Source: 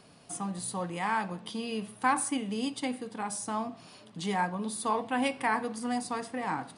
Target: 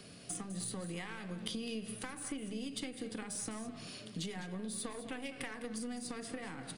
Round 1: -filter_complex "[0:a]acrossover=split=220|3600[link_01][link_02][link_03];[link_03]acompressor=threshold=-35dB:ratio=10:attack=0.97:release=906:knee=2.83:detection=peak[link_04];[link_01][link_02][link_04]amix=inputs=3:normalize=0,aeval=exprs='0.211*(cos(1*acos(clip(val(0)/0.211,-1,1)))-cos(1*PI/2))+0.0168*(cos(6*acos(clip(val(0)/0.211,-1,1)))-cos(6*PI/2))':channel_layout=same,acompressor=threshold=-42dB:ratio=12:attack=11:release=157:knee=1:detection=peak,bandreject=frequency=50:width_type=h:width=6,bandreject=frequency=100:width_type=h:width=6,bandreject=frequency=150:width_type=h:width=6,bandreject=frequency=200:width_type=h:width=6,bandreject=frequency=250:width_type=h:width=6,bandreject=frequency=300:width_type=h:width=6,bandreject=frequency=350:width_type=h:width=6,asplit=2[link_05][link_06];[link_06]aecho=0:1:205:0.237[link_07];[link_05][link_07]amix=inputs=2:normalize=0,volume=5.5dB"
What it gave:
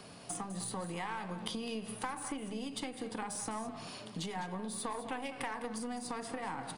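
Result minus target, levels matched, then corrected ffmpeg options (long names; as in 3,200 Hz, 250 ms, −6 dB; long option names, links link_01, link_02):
1,000 Hz band +8.5 dB
-filter_complex "[0:a]acrossover=split=220|3600[link_01][link_02][link_03];[link_03]acompressor=threshold=-35dB:ratio=10:attack=0.97:release=906:knee=2.83:detection=peak[link_04];[link_01][link_02][link_04]amix=inputs=3:normalize=0,aeval=exprs='0.211*(cos(1*acos(clip(val(0)/0.211,-1,1)))-cos(1*PI/2))+0.0168*(cos(6*acos(clip(val(0)/0.211,-1,1)))-cos(6*PI/2))':channel_layout=same,acompressor=threshold=-42dB:ratio=12:attack=11:release=157:knee=1:detection=peak,equalizer=frequency=910:width=1.8:gain=-14.5,bandreject=frequency=50:width_type=h:width=6,bandreject=frequency=100:width_type=h:width=6,bandreject=frequency=150:width_type=h:width=6,bandreject=frequency=200:width_type=h:width=6,bandreject=frequency=250:width_type=h:width=6,bandreject=frequency=300:width_type=h:width=6,bandreject=frequency=350:width_type=h:width=6,asplit=2[link_05][link_06];[link_06]aecho=0:1:205:0.237[link_07];[link_05][link_07]amix=inputs=2:normalize=0,volume=5.5dB"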